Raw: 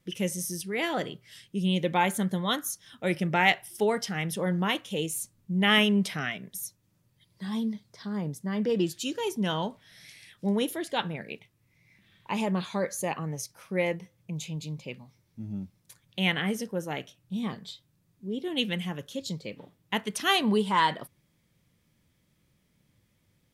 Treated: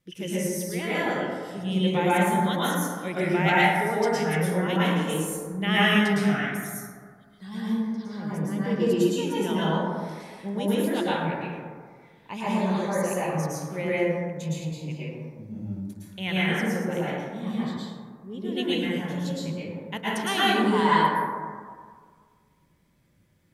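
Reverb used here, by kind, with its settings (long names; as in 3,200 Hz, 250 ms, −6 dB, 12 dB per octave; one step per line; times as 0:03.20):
dense smooth reverb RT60 1.8 s, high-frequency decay 0.3×, pre-delay 100 ms, DRR −9.5 dB
level −6 dB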